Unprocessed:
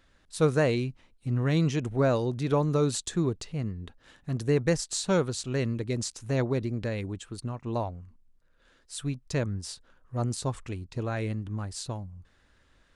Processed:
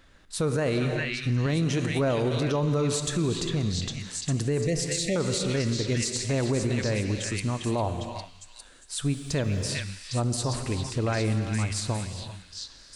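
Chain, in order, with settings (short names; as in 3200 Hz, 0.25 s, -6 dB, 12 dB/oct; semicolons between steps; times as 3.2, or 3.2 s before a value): 1.46–1.99 HPF 110 Hz 6 dB/oct; 9.04–9.7 added noise pink -68 dBFS; in parallel at -11.5 dB: soft clip -26.5 dBFS, distortion -9 dB; 4.64–5.16 on the sum: Chebyshev band-stop 710–1900 Hz, order 4; on a send: delay with a stepping band-pass 0.403 s, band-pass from 2600 Hz, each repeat 0.7 oct, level 0 dB; on the sum: non-linear reverb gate 0.42 s flat, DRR 9 dB; limiter -22.5 dBFS, peak gain reduction 10.5 dB; gain +4.5 dB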